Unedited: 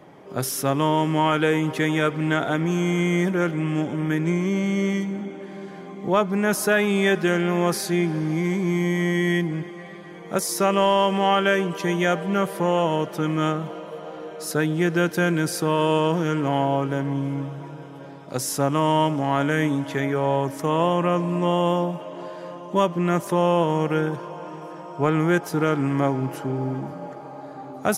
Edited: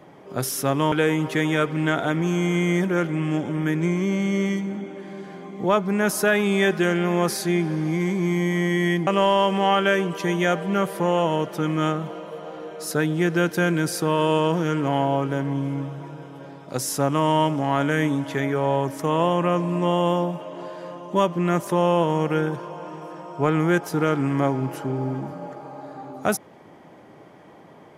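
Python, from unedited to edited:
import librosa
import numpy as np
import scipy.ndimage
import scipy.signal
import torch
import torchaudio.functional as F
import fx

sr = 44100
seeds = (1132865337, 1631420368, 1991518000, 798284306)

y = fx.edit(x, sr, fx.cut(start_s=0.92, length_s=0.44),
    fx.cut(start_s=9.51, length_s=1.16), tone=tone)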